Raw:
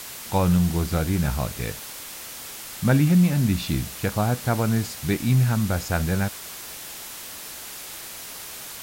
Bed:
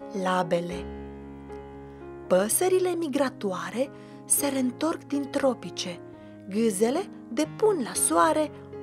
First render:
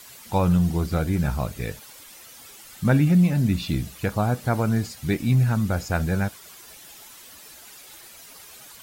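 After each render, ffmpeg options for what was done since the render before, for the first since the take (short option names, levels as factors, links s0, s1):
-af "afftdn=nr=11:nf=-38"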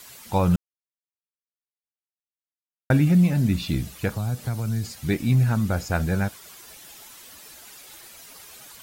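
-filter_complex "[0:a]asettb=1/sr,asplit=3[s0][s1][s2];[s0]atrim=end=4.104[s3];[s1]atrim=start=4.1:end=4.99,asetpts=PTS-STARTPTS,afade=t=in:d=0.004:c=qsin,afade=t=out:st=0.886:d=0.004:c=qsin,acrossover=split=160|3000[s4][s5][s6];[s5]acompressor=threshold=0.02:ratio=6:attack=3.2:release=140:knee=2.83:detection=peak[s7];[s4][s7][s6]amix=inputs=3:normalize=0[s8];[s2]atrim=start=4.986[s9];[s3][s8]acrossfade=d=0.004:c1=hsin:c2=qsin[s10];[s10][s9]acrossfade=d=0.004:c1=qsin:c2=hsin,asplit=3[s11][s12][s13];[s11]atrim=end=0.56,asetpts=PTS-STARTPTS,afade=t=out:st=0.556:d=0.004:c=hsin[s14];[s12]atrim=start=0.56:end=2.9,asetpts=PTS-STARTPTS,volume=0[s15];[s13]atrim=start=2.9,asetpts=PTS-STARTPTS,afade=t=in:d=0.004:c=hsin[s16];[s14][s15][s16]concat=n=3:v=0:a=1"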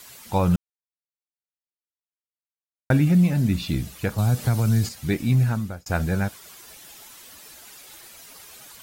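-filter_complex "[0:a]asettb=1/sr,asplit=3[s0][s1][s2];[s0]atrim=end=0.554[s3];[s1]atrim=start=0.55:end=2.93,asetpts=PTS-STARTPTS,afade=t=in:d=0.004:c=qsin,afade=t=out:st=2.376:d=0.004:c=qsin,aeval=exprs='val(0)*gte(abs(val(0)),0.01)':c=same[s4];[s2]atrim=start=2.926[s5];[s3][s4]acrossfade=d=0.004:c1=hsin:c2=qsin[s6];[s6][s5]acrossfade=d=0.004:c1=qsin:c2=hsin,asettb=1/sr,asplit=3[s7][s8][s9];[s7]atrim=end=4.184[s10];[s8]atrim=start=4.18:end=4.89,asetpts=PTS-STARTPTS,afade=t=in:d=0.004:c=qsin,afade=t=out:st=0.706:d=0.004:c=qsin,acontrast=61[s11];[s9]atrim=start=4.886[s12];[s10][s11]acrossfade=d=0.004:c1=hsin:c2=qsin[s13];[s13][s12]acrossfade=d=0.004:c1=qsin:c2=hsin,asplit=2[s14][s15];[s14]atrim=end=5.86,asetpts=PTS-STARTPTS,afade=t=out:st=5.45:d=0.41[s16];[s15]atrim=start=5.86,asetpts=PTS-STARTPTS,afade=t=in:d=0.004:c=hsin[s17];[s16][s17]concat=n=2:v=0:a=1"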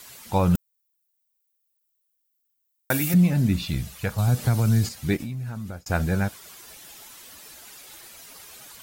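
-filter_complex "[0:a]asettb=1/sr,asplit=3[s0][s1][s2];[s0]atrim=end=0.554[s3];[s1]atrim=start=0.55:end=3.14,asetpts=PTS-STARTPTS,afade=t=in:d=0.004:c=qsin,afade=t=out:st=2.586:d=0.004:c=qsin,aemphasis=mode=production:type=riaa[s4];[s2]atrim=start=3.136[s5];[s3][s4]acrossfade=d=0.004:c1=hsin:c2=qsin[s6];[s6][s5]acrossfade=d=0.004:c1=qsin:c2=hsin,asettb=1/sr,asplit=3[s7][s8][s9];[s7]atrim=end=3.654[s10];[s8]atrim=start=3.65:end=4.28,asetpts=PTS-STARTPTS,afade=t=in:d=0.004:c=qsin,afade=t=out:st=0.626:d=0.004:c=qsin,equalizer=f=300:w=1.5:g=-9[s11];[s9]atrim=start=4.276[s12];[s10][s11]acrossfade=d=0.004:c1=hsin:c2=qsin[s13];[s13][s12]acrossfade=d=0.004:c1=qsin:c2=hsin,asplit=3[s14][s15][s16];[s14]afade=t=out:st=5.16:d=0.02[s17];[s15]acompressor=threshold=0.0398:ratio=16:attack=3.2:release=140:knee=1:detection=peak,afade=t=in:st=5.16:d=0.02,afade=t=out:st=5.75:d=0.02[s18];[s16]afade=t=in:st=5.75:d=0.02[s19];[s17][s18][s19]amix=inputs=3:normalize=0"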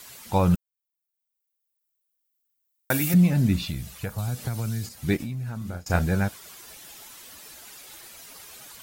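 -filter_complex "[0:a]asettb=1/sr,asplit=3[s0][s1][s2];[s0]atrim=end=3.694[s3];[s1]atrim=start=3.69:end=5.08,asetpts=PTS-STARTPTS,afade=t=in:d=0.004:c=qsin,afade=t=out:st=1.386:d=0.004:c=qsin,acrossover=split=1600|7900[s4][s5][s6];[s4]acompressor=threshold=0.0398:ratio=4[s7];[s5]acompressor=threshold=0.00562:ratio=4[s8];[s6]acompressor=threshold=0.00708:ratio=4[s9];[s7][s8][s9]amix=inputs=3:normalize=0[s10];[s2]atrim=start=5.076[s11];[s3][s10]acrossfade=d=0.004:c1=hsin:c2=qsin[s12];[s12][s11]acrossfade=d=0.004:c1=qsin:c2=hsin,asettb=1/sr,asplit=3[s13][s14][s15];[s13]atrim=end=5.584[s16];[s14]atrim=start=5.58:end=5.99,asetpts=PTS-STARTPTS,afade=t=in:d=0.004:c=qsin,afade=t=out:st=0.406:d=0.004:c=qsin,asplit=2[s17][s18];[s18]adelay=34,volume=0.531[s19];[s17][s19]amix=inputs=2:normalize=0,atrim=end_sample=18081[s20];[s15]atrim=start=5.986[s21];[s16][s20]acrossfade=d=0.004:c1=hsin:c2=qsin[s22];[s22][s21]acrossfade=d=0.004:c1=qsin:c2=hsin,asplit=2[s23][s24];[s23]atrim=end=0.55,asetpts=PTS-STARTPTS,afade=t=out:st=0.546:d=0.004:c=hsin:silence=0.158489[s25];[s24]atrim=start=0.55,asetpts=PTS-STARTPTS,afade=t=in:d=2.53:silence=0.158489[s26];[s25][s26]concat=n=2:v=0:a=1"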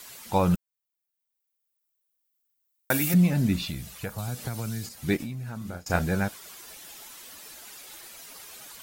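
-af "equalizer=f=86:t=o:w=1.6:g=-6"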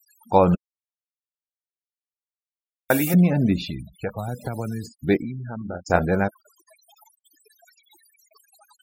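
-af "afftfilt=real='re*gte(hypot(re,im),0.0141)':imag='im*gte(hypot(re,im),0.0141)':win_size=1024:overlap=0.75,equalizer=f=540:w=0.52:g=9.5"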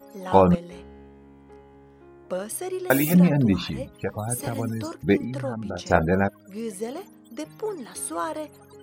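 -filter_complex "[1:a]volume=0.398[s0];[0:a][s0]amix=inputs=2:normalize=0"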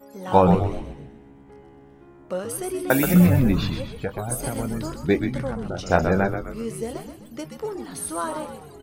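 -filter_complex "[0:a]asplit=2[s0][s1];[s1]adelay=22,volume=0.224[s2];[s0][s2]amix=inputs=2:normalize=0,asplit=2[s3][s4];[s4]asplit=5[s5][s6][s7][s8][s9];[s5]adelay=127,afreqshift=-80,volume=0.447[s10];[s6]adelay=254,afreqshift=-160,volume=0.207[s11];[s7]adelay=381,afreqshift=-240,volume=0.0944[s12];[s8]adelay=508,afreqshift=-320,volume=0.0437[s13];[s9]adelay=635,afreqshift=-400,volume=0.02[s14];[s10][s11][s12][s13][s14]amix=inputs=5:normalize=0[s15];[s3][s15]amix=inputs=2:normalize=0"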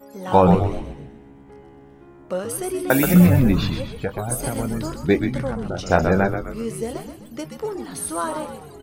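-af "volume=1.33,alimiter=limit=0.794:level=0:latency=1"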